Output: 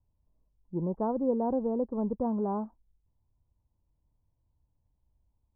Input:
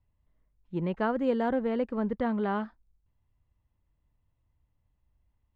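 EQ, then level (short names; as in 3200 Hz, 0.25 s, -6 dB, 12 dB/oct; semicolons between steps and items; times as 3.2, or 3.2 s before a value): Chebyshev low-pass 990 Hz, order 4; air absorption 250 m; 0.0 dB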